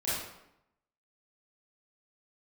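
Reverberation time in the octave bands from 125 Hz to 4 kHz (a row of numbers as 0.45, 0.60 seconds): 0.85, 0.90, 0.80, 0.85, 0.75, 0.60 seconds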